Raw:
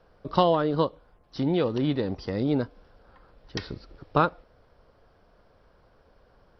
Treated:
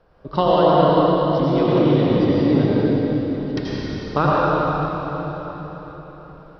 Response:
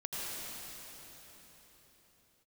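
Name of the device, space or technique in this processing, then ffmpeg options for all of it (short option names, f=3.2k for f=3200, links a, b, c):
swimming-pool hall: -filter_complex "[1:a]atrim=start_sample=2205[a];[0:a][a]afir=irnorm=-1:irlink=0,highshelf=f=3.7k:g=-6.5,volume=6dB"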